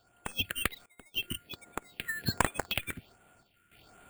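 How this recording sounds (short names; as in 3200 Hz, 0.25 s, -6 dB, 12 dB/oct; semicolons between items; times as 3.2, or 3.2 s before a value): aliases and images of a low sample rate 5900 Hz, jitter 0%; random-step tremolo, depth 95%; phasing stages 4, 1.3 Hz, lowest notch 740–4900 Hz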